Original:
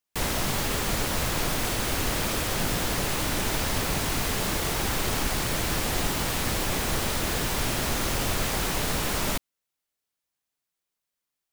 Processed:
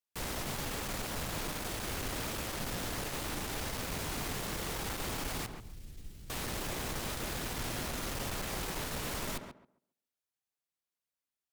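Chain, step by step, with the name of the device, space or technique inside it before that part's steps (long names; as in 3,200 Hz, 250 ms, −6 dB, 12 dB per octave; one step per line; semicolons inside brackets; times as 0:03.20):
0:05.46–0:06.30: guitar amp tone stack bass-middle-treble 10-0-1
rockabilly slapback (tube saturation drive 24 dB, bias 0.4; tape delay 138 ms, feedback 25%, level −4 dB, low-pass 1,300 Hz)
level −7.5 dB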